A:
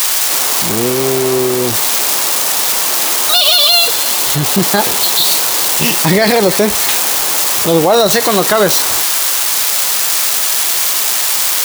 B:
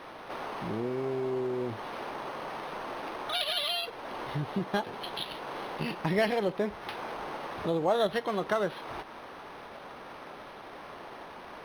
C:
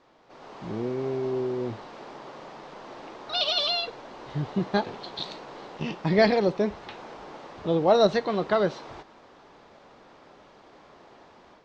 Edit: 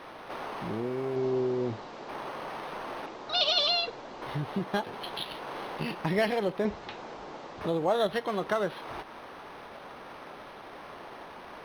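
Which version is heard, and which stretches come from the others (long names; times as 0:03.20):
B
0:01.16–0:02.09: punch in from C
0:03.06–0:04.22: punch in from C
0:06.65–0:07.61: punch in from C
not used: A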